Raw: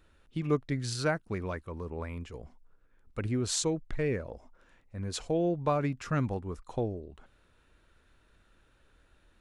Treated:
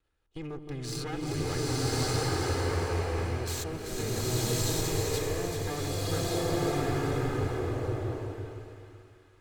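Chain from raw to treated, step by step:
lower of the sound and its delayed copy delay 2.4 ms
output level in coarse steps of 20 dB
on a send: echo with a time of its own for lows and highs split 1,300 Hz, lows 167 ms, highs 387 ms, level −7 dB
on the sum: slow-attack reverb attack 1,170 ms, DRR −9 dB
level +2.5 dB

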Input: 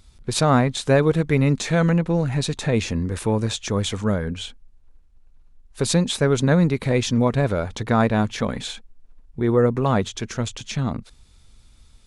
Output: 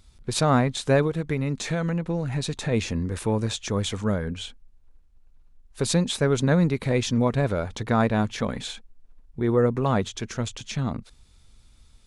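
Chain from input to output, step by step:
0:01.05–0:02.71: downward compressor, threshold −19 dBFS, peak gain reduction 6.5 dB
level −3 dB

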